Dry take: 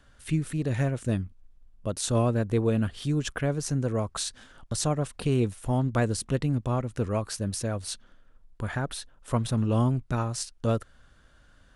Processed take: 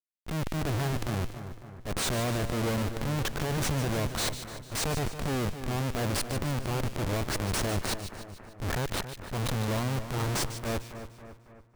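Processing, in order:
comparator with hysteresis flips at −33 dBFS
transient designer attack −9 dB, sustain +5 dB
echo with a time of its own for lows and highs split 2,100 Hz, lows 276 ms, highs 149 ms, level −10.5 dB

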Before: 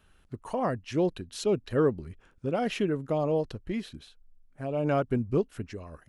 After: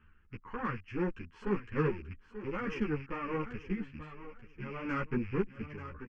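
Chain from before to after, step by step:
loose part that buzzes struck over −40 dBFS, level −33 dBFS
low-pass filter 3,400 Hz 24 dB per octave
reversed playback
upward compression, threshold −41 dBFS
reversed playback
harmonic generator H 6 −17 dB, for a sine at −14 dBFS
phaser with its sweep stopped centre 1,600 Hz, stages 4
on a send: repeating echo 885 ms, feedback 24%, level −12 dB
on the sum: string-ensemble chorus

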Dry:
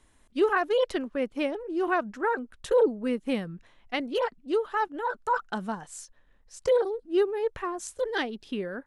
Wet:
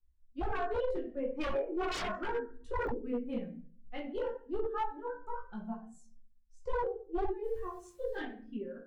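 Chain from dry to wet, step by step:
reverb reduction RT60 1.3 s
0:01.34–0:02.24: parametric band 1,300 Hz +13 dB 2.6 octaves
0:07.42–0:08.16: background noise white −47 dBFS
harmonic generator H 4 −25 dB, 8 −33 dB, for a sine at −3 dBFS
low-shelf EQ 110 Hz +11 dB
0:04.92–0:05.58: downward compressor 3 to 1, threshold −28 dBFS, peak gain reduction 6 dB
chorus effect 0.33 Hz, delay 16.5 ms, depth 5.5 ms
rectangular room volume 140 cubic metres, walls mixed, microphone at 0.92 metres
wave folding −20 dBFS
digital clicks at 0:02.87, −16 dBFS
every bin expanded away from the loudest bin 1.5 to 1
level −5 dB

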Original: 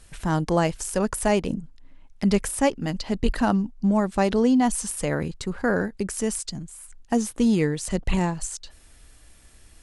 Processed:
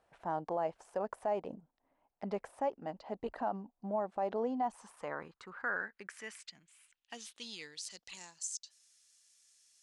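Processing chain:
band-pass filter sweep 730 Hz → 6,100 Hz, 0:04.46–0:08.32
brickwall limiter −22.5 dBFS, peak gain reduction 8 dB
level −3 dB

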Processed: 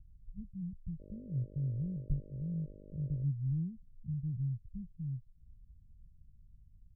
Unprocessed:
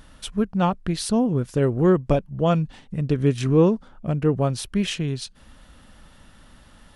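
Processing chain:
inverse Chebyshev low-pass filter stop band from 600 Hz, stop band 70 dB
0:00.99–0:03.23: hum with harmonics 50 Hz, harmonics 12, −48 dBFS −2 dB per octave
level −6.5 dB

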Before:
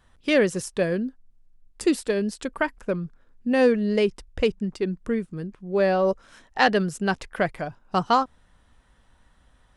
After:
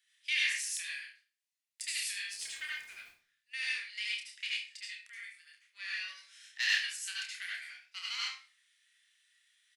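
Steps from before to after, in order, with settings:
one-sided soft clipper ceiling −13 dBFS
Chebyshev high-pass filter 2,000 Hz, order 4
0:02.30–0:03.03: surface crackle 200 per second −45 dBFS
double-tracking delay 29 ms −4.5 dB
convolution reverb RT60 0.40 s, pre-delay 68 ms, DRR −5 dB
level −5.5 dB

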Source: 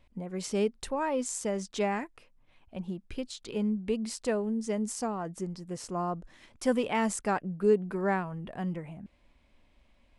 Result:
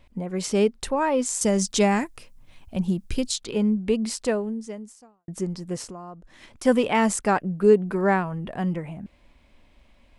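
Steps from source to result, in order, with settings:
0:01.41–0:03.38: bass and treble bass +7 dB, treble +11 dB
0:04.19–0:05.28: fade out quadratic
0:05.82–0:06.65: downward compressor 10 to 1, threshold −44 dBFS, peak gain reduction 16 dB
level +7.5 dB

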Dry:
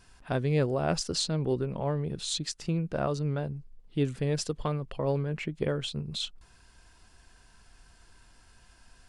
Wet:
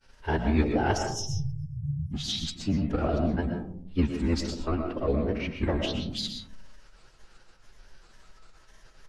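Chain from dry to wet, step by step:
granular cloud, spray 31 ms, pitch spread up and down by 3 semitones
time-frequency box erased 0:00.97–0:02.13, 270–5,100 Hz
phase-vocoder pitch shift with formants kept −10.5 semitones
convolution reverb RT60 0.65 s, pre-delay 80 ms, DRR 4.5 dB
level +4 dB

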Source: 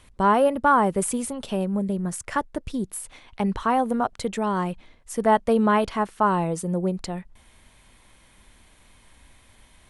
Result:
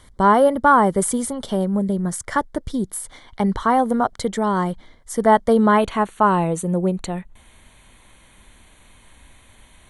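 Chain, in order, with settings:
Butterworth band-reject 2,600 Hz, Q 3.7, from 0:05.77 5,100 Hz
level +4.5 dB

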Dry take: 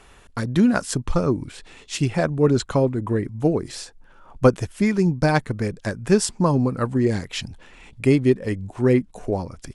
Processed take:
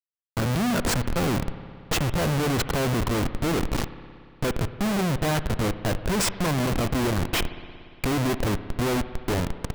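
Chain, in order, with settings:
comparator with hysteresis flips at −28 dBFS
spring reverb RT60 2.3 s, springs 58 ms, chirp 60 ms, DRR 12 dB
level −1.5 dB

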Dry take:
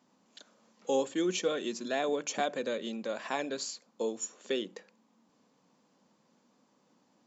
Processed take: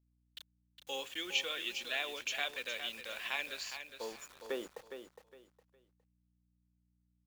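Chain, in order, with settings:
band-pass filter sweep 2,700 Hz → 760 Hz, 0:03.53–0:04.77
bit reduction 10 bits
mains hum 60 Hz, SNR 32 dB
on a send: repeating echo 411 ms, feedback 26%, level −9 dB
on the sum: level +7 dB

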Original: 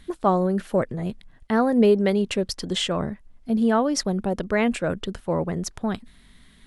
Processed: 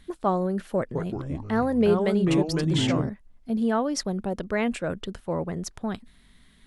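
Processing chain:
0:00.78–0:03.09: delay with pitch and tempo change per echo 172 ms, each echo −4 semitones, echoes 3
level −4 dB

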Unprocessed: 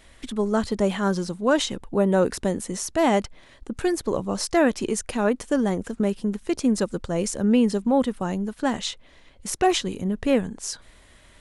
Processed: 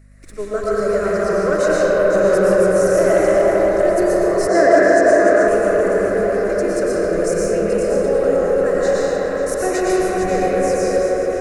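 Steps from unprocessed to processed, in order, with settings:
feedback delay that plays each chunk backwards 270 ms, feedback 46%, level −6 dB
phaser with its sweep stopped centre 880 Hz, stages 6
echo through a band-pass that steps 395 ms, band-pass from 550 Hz, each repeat 0.7 octaves, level −3 dB
convolution reverb RT60 5.6 s, pre-delay 75 ms, DRR −8 dB
leveller curve on the samples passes 1
0:04.48–0:05.48: loudspeaker in its box 130–8,000 Hz, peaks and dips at 280 Hz +9 dB, 670 Hz +6 dB, 1,700 Hz +7 dB, 2,700 Hz −7 dB
mains hum 50 Hz, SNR 31 dB
level −3.5 dB

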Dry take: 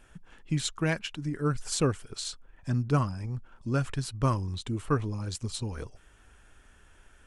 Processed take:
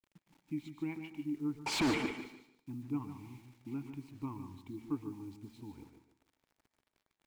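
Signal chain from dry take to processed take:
low-shelf EQ 180 Hz +11 dB
hum removal 226.6 Hz, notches 2
dynamic equaliser 1,600 Hz, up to +5 dB, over −43 dBFS, Q 1.2
in parallel at −2 dB: downward compressor 12 to 1, threshold −26 dBFS, peak gain reduction 13 dB
0:03.09–0:03.74: on the sum: noise that follows the level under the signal 14 dB
formant filter u
0:01.66–0:02.11: mid-hump overdrive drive 44 dB, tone 3,300 Hz, clips at −16 dBFS
bit reduction 10 bits
repeating echo 148 ms, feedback 26%, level −9 dB
on a send at −12 dB: convolution reverb RT60 0.50 s, pre-delay 108 ms
on the sum: level −7 dB

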